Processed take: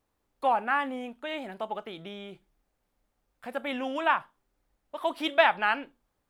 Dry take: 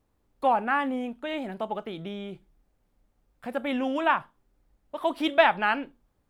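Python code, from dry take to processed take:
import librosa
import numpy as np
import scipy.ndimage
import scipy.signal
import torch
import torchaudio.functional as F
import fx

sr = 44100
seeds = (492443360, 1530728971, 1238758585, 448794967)

y = fx.low_shelf(x, sr, hz=390.0, db=-9.5)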